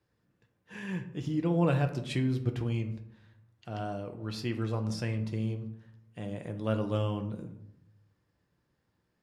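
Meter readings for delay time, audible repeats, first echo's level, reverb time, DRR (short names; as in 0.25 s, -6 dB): none, none, none, 0.75 s, 5.0 dB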